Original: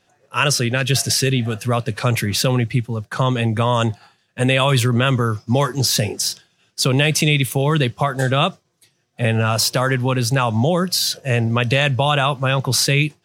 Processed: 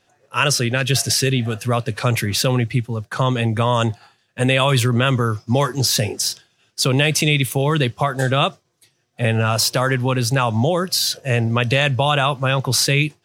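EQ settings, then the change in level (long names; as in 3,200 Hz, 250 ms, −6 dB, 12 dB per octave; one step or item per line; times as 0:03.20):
parametric band 180 Hz −6 dB 0.28 octaves
0.0 dB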